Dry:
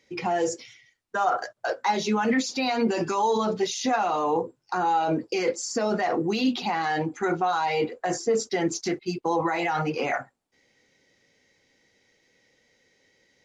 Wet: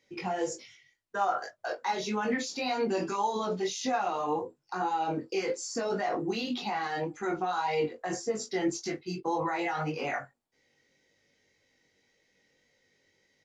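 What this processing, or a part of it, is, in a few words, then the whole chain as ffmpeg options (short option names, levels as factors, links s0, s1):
double-tracked vocal: -filter_complex "[0:a]asplit=2[s0][s1];[s1]adelay=21,volume=0.376[s2];[s0][s2]amix=inputs=2:normalize=0,flanger=delay=19:depth=2.7:speed=1.8,volume=0.708"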